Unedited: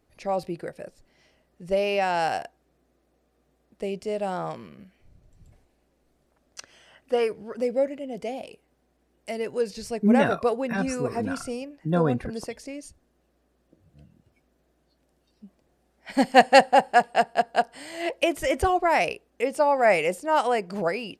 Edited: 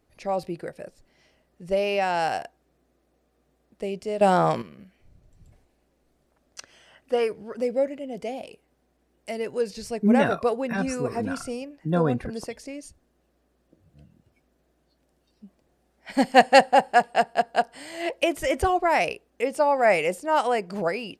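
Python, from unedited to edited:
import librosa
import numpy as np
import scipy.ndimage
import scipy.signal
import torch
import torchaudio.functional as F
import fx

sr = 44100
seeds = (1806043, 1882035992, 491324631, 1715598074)

y = fx.edit(x, sr, fx.clip_gain(start_s=4.21, length_s=0.41, db=10.5), tone=tone)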